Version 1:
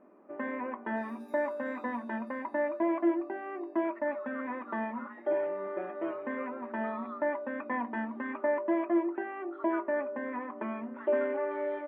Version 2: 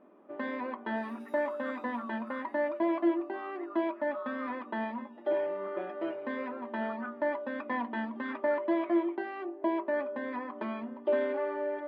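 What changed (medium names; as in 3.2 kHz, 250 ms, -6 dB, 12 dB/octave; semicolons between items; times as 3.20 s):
speech: entry -2.70 s; first sound: remove steep low-pass 2.6 kHz 36 dB/octave; second sound: remove Butterworth band-stop 3 kHz, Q 3.9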